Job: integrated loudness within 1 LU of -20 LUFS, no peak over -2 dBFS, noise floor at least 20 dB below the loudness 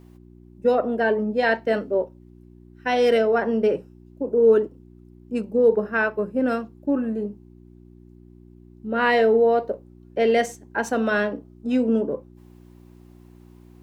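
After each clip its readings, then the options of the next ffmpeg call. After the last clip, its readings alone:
hum 60 Hz; highest harmonic 360 Hz; hum level -46 dBFS; loudness -22.5 LUFS; peak level -7.0 dBFS; loudness target -20.0 LUFS
-> -af "bandreject=f=60:t=h:w=4,bandreject=f=120:t=h:w=4,bandreject=f=180:t=h:w=4,bandreject=f=240:t=h:w=4,bandreject=f=300:t=h:w=4,bandreject=f=360:t=h:w=4"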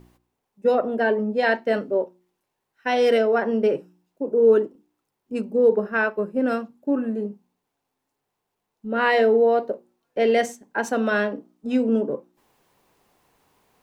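hum not found; loudness -22.5 LUFS; peak level -7.5 dBFS; loudness target -20.0 LUFS
-> -af "volume=1.33"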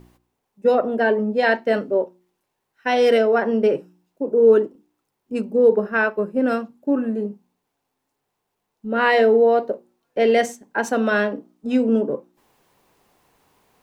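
loudness -20.0 LUFS; peak level -5.0 dBFS; noise floor -78 dBFS

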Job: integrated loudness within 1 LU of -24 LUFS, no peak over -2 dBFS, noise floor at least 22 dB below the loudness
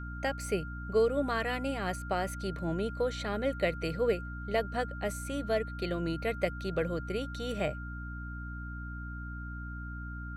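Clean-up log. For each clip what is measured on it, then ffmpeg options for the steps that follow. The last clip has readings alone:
hum 60 Hz; highest harmonic 300 Hz; hum level -38 dBFS; steady tone 1.4 kHz; tone level -44 dBFS; loudness -34.0 LUFS; peak level -16.0 dBFS; loudness target -24.0 LUFS
-> -af "bandreject=f=60:t=h:w=6,bandreject=f=120:t=h:w=6,bandreject=f=180:t=h:w=6,bandreject=f=240:t=h:w=6,bandreject=f=300:t=h:w=6"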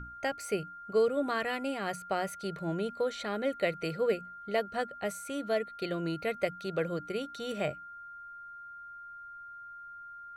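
hum not found; steady tone 1.4 kHz; tone level -44 dBFS
-> -af "bandreject=f=1400:w=30"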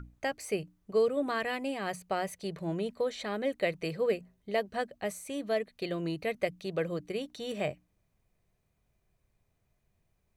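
steady tone not found; loudness -33.5 LUFS; peak level -15.5 dBFS; loudness target -24.0 LUFS
-> -af "volume=2.99"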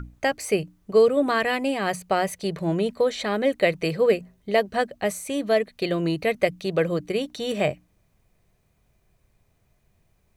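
loudness -24.0 LUFS; peak level -6.0 dBFS; noise floor -67 dBFS

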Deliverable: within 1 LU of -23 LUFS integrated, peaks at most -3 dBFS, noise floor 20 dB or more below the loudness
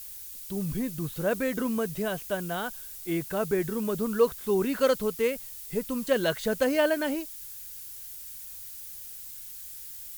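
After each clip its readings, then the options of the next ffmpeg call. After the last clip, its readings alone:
noise floor -42 dBFS; noise floor target -50 dBFS; loudness -30.0 LUFS; peak level -10.5 dBFS; loudness target -23.0 LUFS
-> -af "afftdn=nr=8:nf=-42"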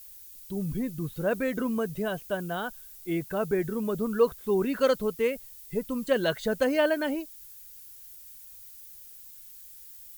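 noise floor -48 dBFS; noise floor target -49 dBFS
-> -af "afftdn=nr=6:nf=-48"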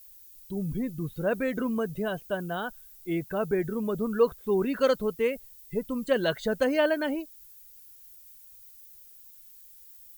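noise floor -52 dBFS; loudness -29.0 LUFS; peak level -11.0 dBFS; loudness target -23.0 LUFS
-> -af "volume=2"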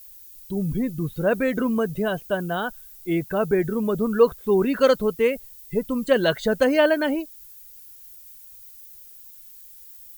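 loudness -23.0 LUFS; peak level -5.0 dBFS; noise floor -46 dBFS

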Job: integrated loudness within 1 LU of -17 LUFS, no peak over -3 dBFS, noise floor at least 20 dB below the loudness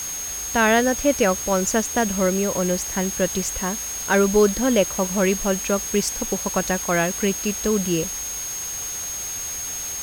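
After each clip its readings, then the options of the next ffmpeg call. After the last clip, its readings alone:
steady tone 6.5 kHz; tone level -28 dBFS; noise floor -30 dBFS; noise floor target -42 dBFS; loudness -21.5 LUFS; peak level -6.5 dBFS; loudness target -17.0 LUFS
-> -af "bandreject=f=6500:w=30"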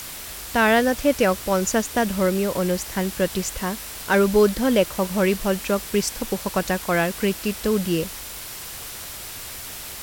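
steady tone not found; noise floor -36 dBFS; noise floor target -43 dBFS
-> -af "afftdn=nr=7:nf=-36"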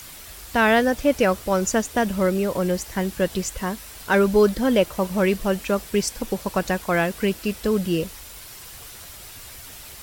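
noise floor -41 dBFS; noise floor target -42 dBFS
-> -af "afftdn=nr=6:nf=-41"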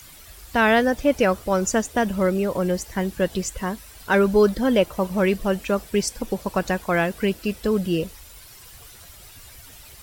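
noise floor -45 dBFS; loudness -22.5 LUFS; peak level -7.0 dBFS; loudness target -17.0 LUFS
-> -af "volume=1.88,alimiter=limit=0.708:level=0:latency=1"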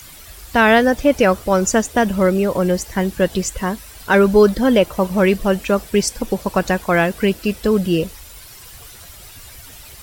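loudness -17.0 LUFS; peak level -3.0 dBFS; noise floor -40 dBFS

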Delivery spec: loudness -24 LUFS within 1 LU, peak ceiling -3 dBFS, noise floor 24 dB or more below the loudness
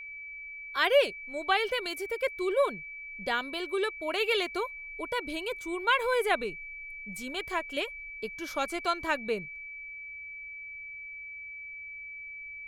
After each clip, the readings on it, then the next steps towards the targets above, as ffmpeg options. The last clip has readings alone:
steady tone 2.3 kHz; tone level -40 dBFS; loudness -31.5 LUFS; peak level -12.5 dBFS; loudness target -24.0 LUFS
-> -af "bandreject=f=2300:w=30"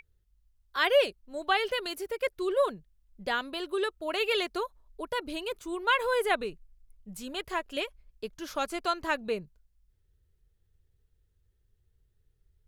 steady tone not found; loudness -30.5 LUFS; peak level -13.0 dBFS; loudness target -24.0 LUFS
-> -af "volume=2.11"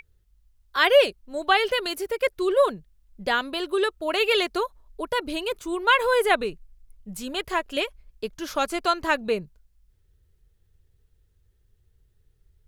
loudness -24.0 LUFS; peak level -6.5 dBFS; noise floor -65 dBFS

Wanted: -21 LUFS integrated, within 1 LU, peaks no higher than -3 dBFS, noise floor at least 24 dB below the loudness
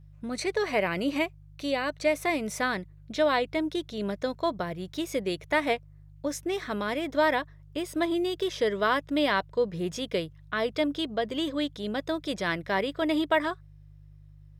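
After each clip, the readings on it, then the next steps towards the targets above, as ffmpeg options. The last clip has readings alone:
hum 50 Hz; highest harmonic 150 Hz; hum level -48 dBFS; loudness -29.0 LUFS; peak level -11.5 dBFS; loudness target -21.0 LUFS
-> -af "bandreject=f=50:t=h:w=4,bandreject=f=100:t=h:w=4,bandreject=f=150:t=h:w=4"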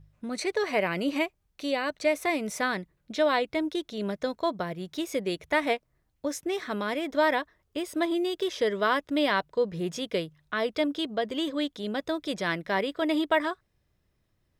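hum not found; loudness -29.0 LUFS; peak level -12.0 dBFS; loudness target -21.0 LUFS
-> -af "volume=2.51"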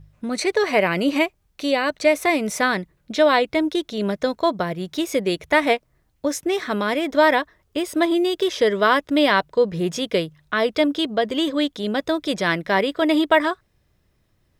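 loudness -21.0 LUFS; peak level -4.0 dBFS; noise floor -66 dBFS

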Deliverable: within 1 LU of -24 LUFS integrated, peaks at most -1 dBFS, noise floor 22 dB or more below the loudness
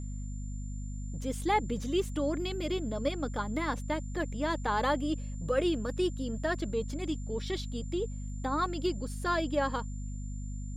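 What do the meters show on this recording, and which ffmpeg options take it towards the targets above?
hum 50 Hz; highest harmonic 250 Hz; hum level -35 dBFS; steady tone 7.2 kHz; tone level -54 dBFS; loudness -33.0 LUFS; peak level -16.0 dBFS; loudness target -24.0 LUFS
-> -af "bandreject=f=50:t=h:w=4,bandreject=f=100:t=h:w=4,bandreject=f=150:t=h:w=4,bandreject=f=200:t=h:w=4,bandreject=f=250:t=h:w=4"
-af "bandreject=f=7200:w=30"
-af "volume=2.82"

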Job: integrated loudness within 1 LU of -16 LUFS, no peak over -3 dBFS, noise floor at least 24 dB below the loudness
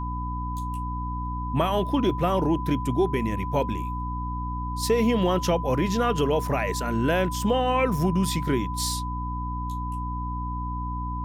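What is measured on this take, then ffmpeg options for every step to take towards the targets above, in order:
hum 60 Hz; highest harmonic 300 Hz; hum level -29 dBFS; steady tone 1 kHz; tone level -32 dBFS; loudness -26.0 LUFS; peak level -10.5 dBFS; loudness target -16.0 LUFS
-> -af "bandreject=f=60:t=h:w=4,bandreject=f=120:t=h:w=4,bandreject=f=180:t=h:w=4,bandreject=f=240:t=h:w=4,bandreject=f=300:t=h:w=4"
-af "bandreject=f=1000:w=30"
-af "volume=3.16,alimiter=limit=0.708:level=0:latency=1"

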